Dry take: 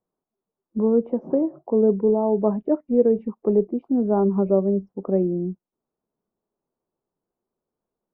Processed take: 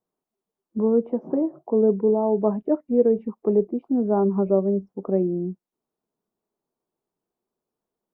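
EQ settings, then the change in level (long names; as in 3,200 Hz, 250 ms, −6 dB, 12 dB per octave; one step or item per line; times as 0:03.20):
low-shelf EQ 110 Hz −6.5 dB
notch filter 540 Hz, Q 18
0.0 dB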